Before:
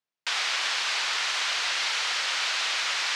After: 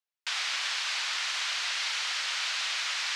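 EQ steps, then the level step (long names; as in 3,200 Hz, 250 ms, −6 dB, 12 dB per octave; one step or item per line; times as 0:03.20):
high-pass filter 1,100 Hz 6 dB per octave
−3.0 dB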